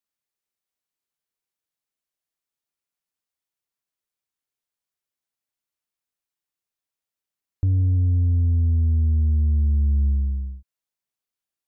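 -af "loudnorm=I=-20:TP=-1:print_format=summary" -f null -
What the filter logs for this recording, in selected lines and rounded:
Input Integrated:    -21.7 LUFS
Input True Peak:     -16.2 dBTP
Input LRA:             2.3 LU
Input Threshold:     -32.2 LUFS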